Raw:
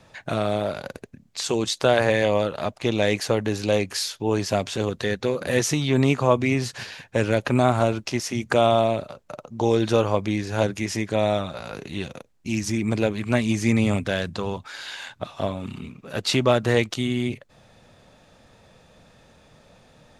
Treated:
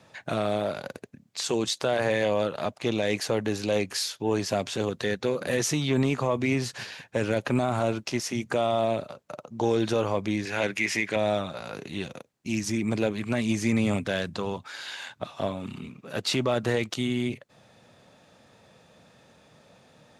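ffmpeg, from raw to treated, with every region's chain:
-filter_complex "[0:a]asettb=1/sr,asplit=3[s0][s1][s2];[s0]atrim=end=10.454[s3];[s1]atrim=start=10.45:end=11.16,asetpts=PTS-STARTPTS,afade=t=in:d=0.004:c=qsin,afade=t=out:st=0.706:d=0.004:c=qsin,highpass=f=190:p=1,equalizer=f=2200:t=o:w=0.97:g=12.5[s4];[s2]atrim=start=11.156[s5];[s3][s4]acrossfade=d=0.004:c1=hsin:c2=qsin[s6];[s6][s5]acrossfade=d=0.004:c1=qsin:c2=hsin,highpass=110,alimiter=limit=0.251:level=0:latency=1:release=21,acontrast=75,volume=0.355"

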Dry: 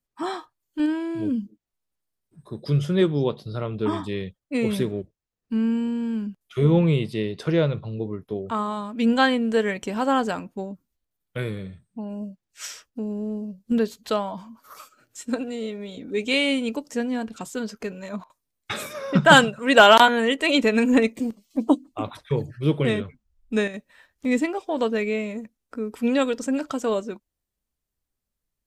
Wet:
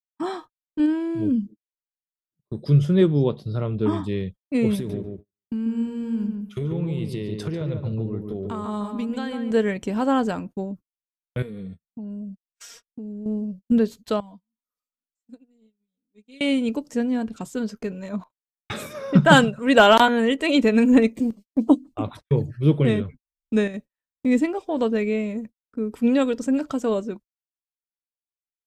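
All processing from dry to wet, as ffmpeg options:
-filter_complex "[0:a]asettb=1/sr,asplit=3[s0][s1][s2];[s0]atrim=end=4.754[s3];[s1]atrim=start=4.75:end=9.51,asetpts=PTS-STARTPTS,afade=t=in:d=0.004:c=qsin,afade=t=out:st=4.756:d=0.004:c=qsin,highshelf=f=5100:g=8,acompressor=threshold=0.0447:ratio=12:attack=3.2:release=140:knee=1:detection=peak,asplit=2[s4][s5];[s5]adelay=143,lowpass=f=1800:p=1,volume=0.631,asplit=2[s6][s7];[s7]adelay=143,lowpass=f=1800:p=1,volume=0.23,asplit=2[s8][s9];[s9]adelay=143,lowpass=f=1800:p=1,volume=0.23[s10];[s4][s6][s8][s10]amix=inputs=4:normalize=0,atrim=end_sample=209916[s11];[s2]atrim=start=9.506[s12];[s3][s11]acrossfade=d=0.004:c1=hsin:c2=qsin[s13];[s13][s12]acrossfade=d=0.004:c1=qsin:c2=hsin,asettb=1/sr,asplit=3[s14][s15][s16];[s14]atrim=end=11.424[s17];[s15]atrim=start=11.42:end=13.26,asetpts=PTS-STARTPTS,afade=t=in:d=0.004:c=qsin,afade=t=out:st=1.836:d=0.004:c=qsin,equalizer=f=2200:t=o:w=1.2:g=-3.5,aecho=1:1:4.3:0.74,atrim=end_sample=81144,acompressor=threshold=0.0178:ratio=10:attack=3.2:release=140:knee=1:detection=peak[s18];[s16]atrim=start=13.256[s19];[s17][s18]acrossfade=d=0.004:c1=hsin:c2=qsin[s20];[s20][s19]acrossfade=d=0.004:c1=qsin:c2=hsin,asettb=1/sr,asplit=3[s21][s22][s23];[s21]atrim=end=14.204[s24];[s22]atrim=start=14.2:end=16.41,asetpts=PTS-STARTPTS,afade=t=in:d=0.004:c=qsin,afade=t=out:st=2.206:d=0.004:c=qsin,equalizer=f=950:w=0.32:g=-10.5,aecho=1:1:4.1:0.87,atrim=end_sample=97461,acompressor=threshold=0.00355:ratio=2.5:attack=3.2:release=140:knee=1:detection=peak[s25];[s23]atrim=start=16.406[s26];[s24][s25]acrossfade=d=0.004:c1=hsin:c2=qsin[s27];[s27][s26]acrossfade=d=0.004:c1=qsin:c2=hsin,agate=range=0.01:threshold=0.00891:ratio=16:detection=peak,lowshelf=f=420:g=9.5,volume=0.668"

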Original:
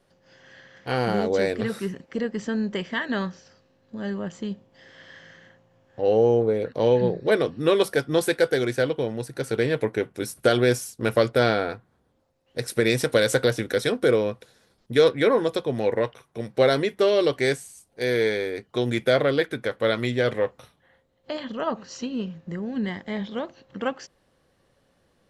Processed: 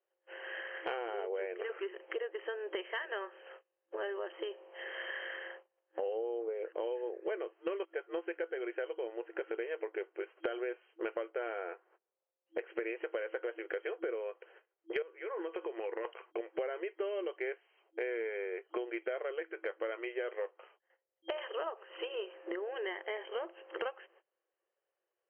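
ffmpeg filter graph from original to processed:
-filter_complex "[0:a]asettb=1/sr,asplit=3[s0][s1][s2];[s0]atrim=end=7.534[s3];[s1]atrim=start=7.53:end=7.94,asetpts=PTS-STARTPTS,afade=t=in:d=0.004:c=qsin,afade=t=out:st=0.406:d=0.004:c=qsin,aeval=exprs='val(0)+0.5*0.0316*sgn(val(0))':c=same,agate=range=0.0794:threshold=0.0891:ratio=16:release=100:detection=peak[s4];[s2]atrim=start=7.936[s5];[s3][s4]acrossfade=d=0.004:c1=hsin:c2=qsin[s6];[s6][s5]acrossfade=d=0.004:c1=qsin:c2=hsin,asettb=1/sr,asplit=3[s7][s8][s9];[s7]atrim=end=15.024[s10];[s8]atrim=start=15.02:end=16.05,asetpts=PTS-STARTPTS,afade=t=in:d=0.004:c=qsin,afade=t=out:st=1.026:d=0.004:c=qsin,equalizer=f=640:w=1.8:g=-6,acompressor=threshold=0.0355:ratio=16:attack=3.2:release=140:knee=1:detection=peak[s11];[s9]atrim=start=16.046[s12];[s10][s11]acrossfade=d=0.004:c1=hsin:c2=qsin[s13];[s13][s12]acrossfade=d=0.004:c1=qsin:c2=hsin,agate=range=0.0355:threshold=0.00158:ratio=16:detection=peak,afftfilt=real='re*between(b*sr/4096,330,3200)':imag='im*between(b*sr/4096,330,3200)':win_size=4096:overlap=0.75,acompressor=threshold=0.00631:ratio=8,volume=2.51"

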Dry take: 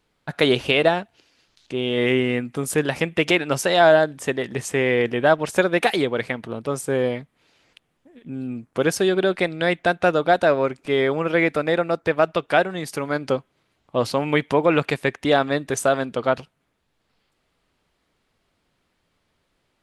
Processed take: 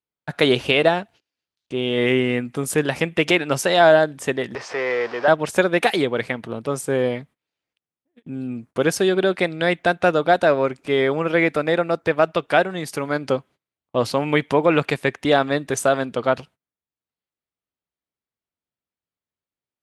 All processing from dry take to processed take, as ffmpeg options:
-filter_complex "[0:a]asettb=1/sr,asplit=3[s0][s1][s2];[s0]atrim=end=4.554[s3];[s1]atrim=start=4.55:end=5.28,asetpts=PTS-STARTPTS,afade=t=in:d=0.004:c=qsin,afade=t=out:st=0.726:d=0.004:c=qsin,aeval=exprs='val(0)+0.5*0.0596*sgn(val(0))':c=same,lowpass=f=5100:t=q:w=5.1,acrossover=split=470 2000:gain=0.0891 1 0.112[s4][s5][s6];[s4][s5][s6]amix=inputs=3:normalize=0[s7];[s2]atrim=start=5.276[s8];[s3][s7]acrossfade=d=0.004:c1=hsin:c2=qsin[s9];[s9][s8]acrossfade=d=0.004:c1=qsin:c2=hsin,agate=range=0.0501:threshold=0.00631:ratio=16:detection=peak,highpass=51,volume=1.12"

